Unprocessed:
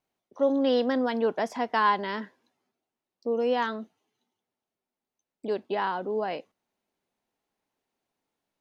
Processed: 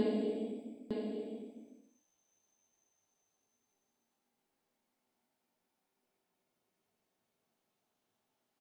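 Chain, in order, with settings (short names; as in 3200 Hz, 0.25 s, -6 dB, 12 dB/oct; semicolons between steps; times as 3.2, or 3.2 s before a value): whole clip reversed; Paulstretch 10×, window 0.25 s, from 3.17; echo 0.906 s -5.5 dB; gain +4.5 dB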